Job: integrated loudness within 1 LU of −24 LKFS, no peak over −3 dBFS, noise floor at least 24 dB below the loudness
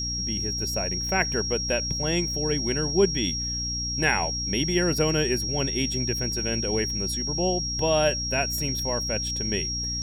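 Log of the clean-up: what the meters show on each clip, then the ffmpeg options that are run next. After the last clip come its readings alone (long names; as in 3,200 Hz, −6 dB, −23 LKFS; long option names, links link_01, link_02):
mains hum 60 Hz; hum harmonics up to 300 Hz; level of the hum −32 dBFS; interfering tone 5,600 Hz; level of the tone −28 dBFS; integrated loudness −25.0 LKFS; sample peak −9.0 dBFS; target loudness −24.0 LKFS
→ -af "bandreject=frequency=60:width_type=h:width=4,bandreject=frequency=120:width_type=h:width=4,bandreject=frequency=180:width_type=h:width=4,bandreject=frequency=240:width_type=h:width=4,bandreject=frequency=300:width_type=h:width=4"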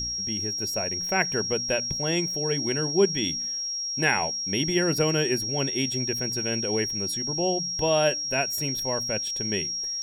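mains hum none found; interfering tone 5,600 Hz; level of the tone −28 dBFS
→ -af "bandreject=frequency=5600:width=30"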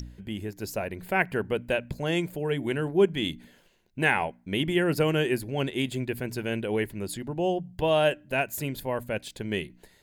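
interfering tone none found; integrated loudness −28.5 LKFS; sample peak −10.0 dBFS; target loudness −24.0 LKFS
→ -af "volume=4.5dB"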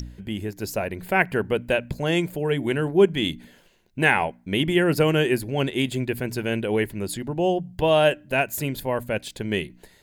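integrated loudness −24.0 LKFS; sample peak −5.5 dBFS; background noise floor −56 dBFS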